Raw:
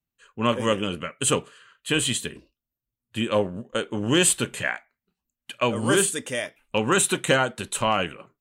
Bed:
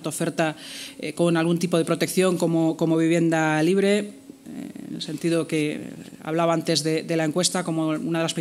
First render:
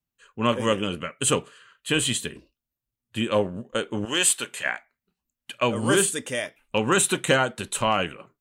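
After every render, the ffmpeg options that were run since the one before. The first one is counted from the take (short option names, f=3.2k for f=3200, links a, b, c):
-filter_complex "[0:a]asettb=1/sr,asplit=3[a][b][c];[a]atrim=end=4.054[d];[b]atrim=start=4.05:end=4.66,asetpts=PTS-STARTPTS,afade=t=in:d=0.004:c=qsin,afade=t=out:st=0.606:d=0.004:c=qsin,highpass=f=950:p=1[e];[c]atrim=start=4.656[f];[d][e]acrossfade=d=0.004:c1=hsin:c2=qsin[g];[g][f]acrossfade=d=0.004:c1=qsin:c2=hsin"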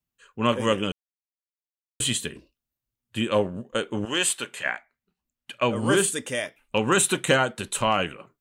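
-filter_complex "[0:a]asettb=1/sr,asplit=3[a][b][c];[a]atrim=end=4.084[d];[b]atrim=start=4.08:end=6.04,asetpts=PTS-STARTPTS,afade=t=in:d=0.004:c=qsin,afade=t=out:st=1.956:d=0.004:c=qsin,highshelf=f=5k:g=-6[e];[c]atrim=start=6.036[f];[d][e]acrossfade=d=0.004:c1=hsin:c2=qsin[g];[g][f]acrossfade=d=0.004:c1=qsin:c2=hsin,asplit=3[h][i][j];[h]atrim=end=0.92,asetpts=PTS-STARTPTS,afade=t=out:st=0.916:d=0.004:c=hsin[k];[i]atrim=start=0.92:end=2,asetpts=PTS-STARTPTS,volume=0[l];[j]atrim=start=2,asetpts=PTS-STARTPTS,afade=t=in:d=0.004:c=hsin[m];[k][l][m]concat=n=3:v=0:a=1"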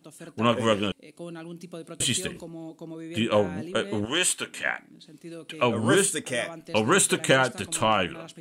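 -filter_complex "[1:a]volume=-18.5dB[a];[0:a][a]amix=inputs=2:normalize=0"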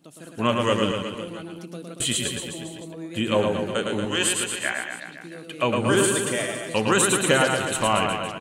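-af "aecho=1:1:110|231|364.1|510.5|671.6:0.631|0.398|0.251|0.158|0.1"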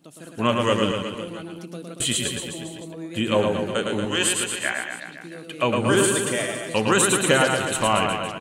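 -af "volume=1dB"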